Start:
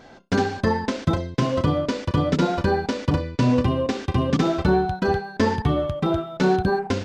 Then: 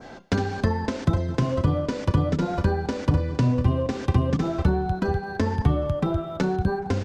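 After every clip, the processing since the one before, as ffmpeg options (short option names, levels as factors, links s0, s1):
-filter_complex "[0:a]aecho=1:1:210|420|630:0.0841|0.0395|0.0186,acrossover=split=120[s0][s1];[s1]acompressor=threshold=0.0398:ratio=10[s2];[s0][s2]amix=inputs=2:normalize=0,adynamicequalizer=threshold=0.00178:dfrequency=3400:dqfactor=0.9:tfrequency=3400:tqfactor=0.9:attack=5:release=100:ratio=0.375:range=2.5:mode=cutabove:tftype=bell,volume=1.78"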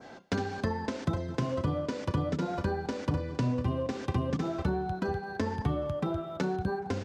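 -af "highpass=f=140:p=1,volume=0.531"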